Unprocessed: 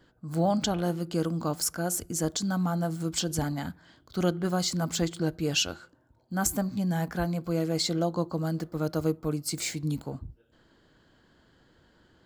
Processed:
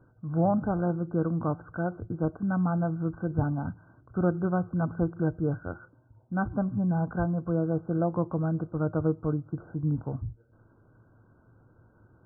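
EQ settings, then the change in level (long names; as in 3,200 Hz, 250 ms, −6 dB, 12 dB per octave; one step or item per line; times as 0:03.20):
linear-phase brick-wall low-pass 1,600 Hz
parametric band 110 Hz +14.5 dB 0.43 octaves
0.0 dB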